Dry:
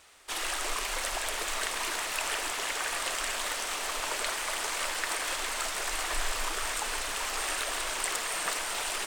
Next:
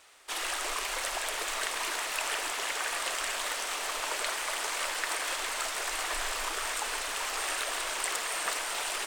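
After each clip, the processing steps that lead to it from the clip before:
bass and treble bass −9 dB, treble −1 dB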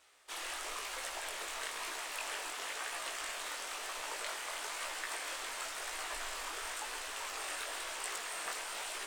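chorus effect 1 Hz, delay 15.5 ms, depth 7.9 ms
level −5 dB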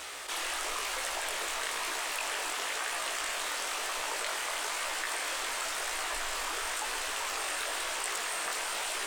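envelope flattener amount 70%
level +4 dB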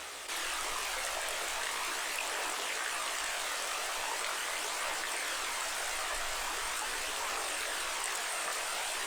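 phase shifter 0.41 Hz, delay 1.7 ms, feedback 20%
level −1.5 dB
Opus 64 kbit/s 48,000 Hz

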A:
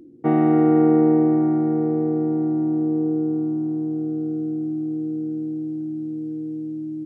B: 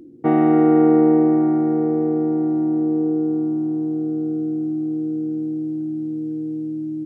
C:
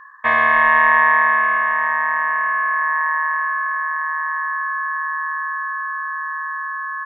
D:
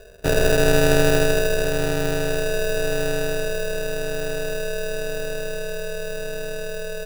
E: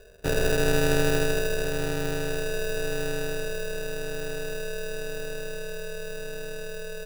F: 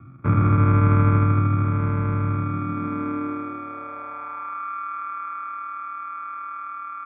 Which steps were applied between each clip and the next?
dynamic equaliser 120 Hz, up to −6 dB, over −33 dBFS, Q 1; level +3 dB
ring modulation 1,400 Hz; level +3 dB
decimation without filtering 41×; level −2 dB
notch filter 650 Hz, Q 13; level −5.5 dB
single-sideband voice off tune −340 Hz 200–2,200 Hz; high-pass filter sweep 120 Hz → 1,200 Hz, 0:02.29–0:04.73; level +6.5 dB

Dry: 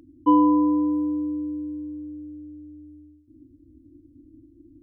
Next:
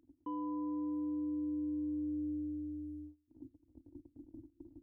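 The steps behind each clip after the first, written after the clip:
noise gate −49 dBFS, range −21 dB
reversed playback
downward compressor 5 to 1, threshold −29 dBFS, peak gain reduction 14.5 dB
reversed playback
brickwall limiter −34 dBFS, peak gain reduction 11 dB
level +1 dB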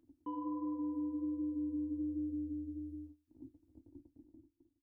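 fade-out on the ending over 1.09 s
flanger 1.3 Hz, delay 8.3 ms, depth 7.5 ms, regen −52%
level +3.5 dB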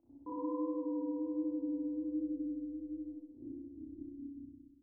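low-pass filter sweep 730 Hz → 200 Hz, 0:02.63–0:04.57
dynamic equaliser 100 Hz, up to −6 dB, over −52 dBFS, Q 0.99
spring reverb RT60 1.2 s, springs 32/57 ms, chirp 65 ms, DRR −8.5 dB
level −4 dB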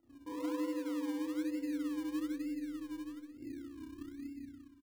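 in parallel at −5 dB: sample-and-hold swept by an LFO 26×, swing 60% 1.1 Hz
on the sum: single-tap delay 181 ms −13.5 dB
level −3 dB

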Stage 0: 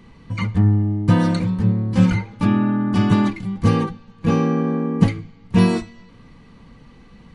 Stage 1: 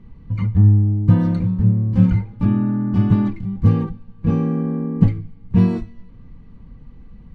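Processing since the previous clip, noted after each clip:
RIAA equalisation playback
level −8.5 dB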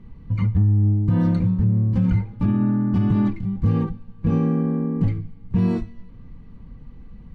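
brickwall limiter −11.5 dBFS, peak gain reduction 9.5 dB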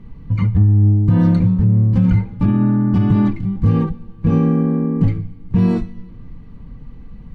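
rectangular room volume 3,900 cubic metres, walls furnished, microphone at 0.36 metres
level +5 dB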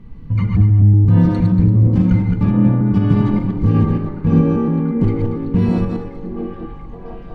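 feedback delay that plays each chunk backwards 117 ms, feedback 41%, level −3 dB
echo through a band-pass that steps 686 ms, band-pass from 370 Hz, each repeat 0.7 octaves, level −1.5 dB
level −1 dB

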